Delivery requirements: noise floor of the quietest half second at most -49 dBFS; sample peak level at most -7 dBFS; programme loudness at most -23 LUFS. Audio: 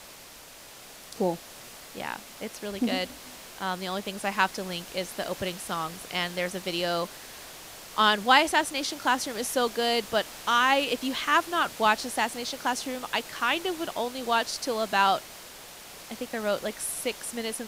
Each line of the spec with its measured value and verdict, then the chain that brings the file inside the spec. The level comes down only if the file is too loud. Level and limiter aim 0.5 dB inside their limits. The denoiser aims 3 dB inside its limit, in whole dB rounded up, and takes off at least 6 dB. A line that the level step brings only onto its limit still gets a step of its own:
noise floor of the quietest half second -48 dBFS: fail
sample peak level -5.5 dBFS: fail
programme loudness -27.5 LUFS: OK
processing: denoiser 6 dB, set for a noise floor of -48 dBFS; limiter -7.5 dBFS

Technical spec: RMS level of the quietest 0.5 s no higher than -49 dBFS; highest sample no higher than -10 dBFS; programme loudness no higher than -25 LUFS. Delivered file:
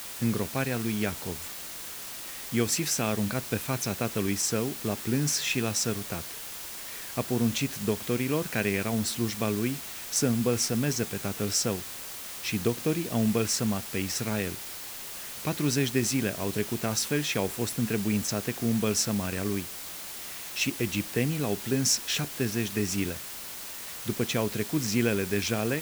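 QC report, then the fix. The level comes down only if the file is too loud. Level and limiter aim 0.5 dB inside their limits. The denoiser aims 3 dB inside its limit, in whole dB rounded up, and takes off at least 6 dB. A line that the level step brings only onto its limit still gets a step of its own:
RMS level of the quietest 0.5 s -40 dBFS: fail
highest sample -11.5 dBFS: OK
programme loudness -29.0 LUFS: OK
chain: denoiser 12 dB, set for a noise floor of -40 dBFS

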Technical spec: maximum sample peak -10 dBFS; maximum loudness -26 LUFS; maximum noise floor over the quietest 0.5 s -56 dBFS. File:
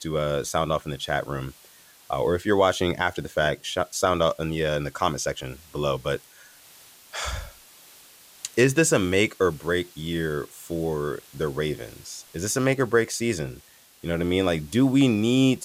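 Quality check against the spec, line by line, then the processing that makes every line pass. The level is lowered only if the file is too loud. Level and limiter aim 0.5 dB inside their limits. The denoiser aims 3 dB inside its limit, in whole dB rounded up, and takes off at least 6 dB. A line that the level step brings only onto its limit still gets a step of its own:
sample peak -7.5 dBFS: fail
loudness -25.0 LUFS: fail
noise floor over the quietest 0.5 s -52 dBFS: fail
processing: denoiser 6 dB, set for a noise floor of -52 dBFS; gain -1.5 dB; limiter -10.5 dBFS

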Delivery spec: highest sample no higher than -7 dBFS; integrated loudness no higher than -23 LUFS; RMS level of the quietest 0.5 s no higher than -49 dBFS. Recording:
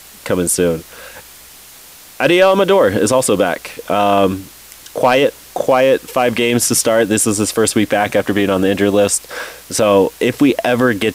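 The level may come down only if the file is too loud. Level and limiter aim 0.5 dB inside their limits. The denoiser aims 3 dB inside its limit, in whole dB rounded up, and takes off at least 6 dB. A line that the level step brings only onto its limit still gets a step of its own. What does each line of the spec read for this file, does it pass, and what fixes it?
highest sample -2.5 dBFS: fail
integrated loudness -14.5 LUFS: fail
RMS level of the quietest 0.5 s -39 dBFS: fail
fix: denoiser 6 dB, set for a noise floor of -39 dBFS; gain -9 dB

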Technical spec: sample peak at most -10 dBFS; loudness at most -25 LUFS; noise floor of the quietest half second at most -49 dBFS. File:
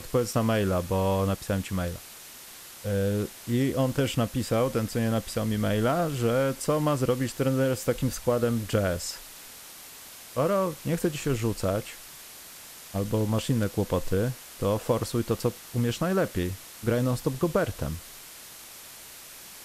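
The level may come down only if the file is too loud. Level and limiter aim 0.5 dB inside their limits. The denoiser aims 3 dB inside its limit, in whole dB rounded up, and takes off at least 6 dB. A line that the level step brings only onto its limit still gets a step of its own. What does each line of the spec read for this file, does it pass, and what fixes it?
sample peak -10.5 dBFS: OK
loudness -27.5 LUFS: OK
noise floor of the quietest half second -46 dBFS: fail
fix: denoiser 6 dB, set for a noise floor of -46 dBFS

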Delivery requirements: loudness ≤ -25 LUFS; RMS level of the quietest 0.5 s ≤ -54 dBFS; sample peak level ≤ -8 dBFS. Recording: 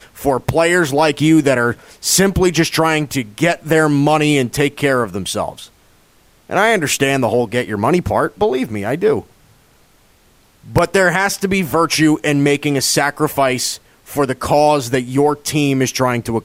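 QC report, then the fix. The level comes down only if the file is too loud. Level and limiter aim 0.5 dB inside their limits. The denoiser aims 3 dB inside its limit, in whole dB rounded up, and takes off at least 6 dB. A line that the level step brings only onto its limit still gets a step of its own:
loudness -15.5 LUFS: fail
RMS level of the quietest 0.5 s -52 dBFS: fail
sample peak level -2.5 dBFS: fail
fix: gain -10 dB

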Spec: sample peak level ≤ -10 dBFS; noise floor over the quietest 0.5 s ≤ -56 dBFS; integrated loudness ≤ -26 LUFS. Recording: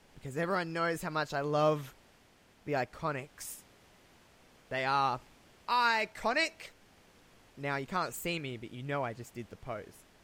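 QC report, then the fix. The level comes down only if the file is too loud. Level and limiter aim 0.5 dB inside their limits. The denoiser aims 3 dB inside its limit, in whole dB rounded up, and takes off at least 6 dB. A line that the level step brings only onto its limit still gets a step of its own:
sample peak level -16.5 dBFS: OK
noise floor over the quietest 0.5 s -63 dBFS: OK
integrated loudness -33.5 LUFS: OK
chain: none

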